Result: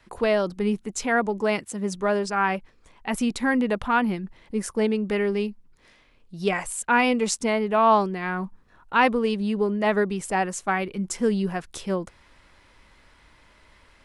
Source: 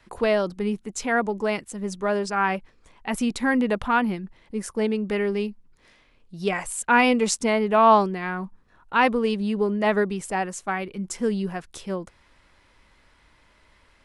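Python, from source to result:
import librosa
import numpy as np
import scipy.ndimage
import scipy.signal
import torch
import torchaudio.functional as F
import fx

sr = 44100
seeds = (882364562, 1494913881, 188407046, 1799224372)

p1 = fx.highpass(x, sr, hz=fx.line((1.39, 43.0), (1.93, 100.0)), slope=12, at=(1.39, 1.93), fade=0.02)
p2 = fx.rider(p1, sr, range_db=5, speed_s=0.5)
p3 = p1 + (p2 * librosa.db_to_amplitude(2.5))
y = p3 * librosa.db_to_amplitude(-7.5)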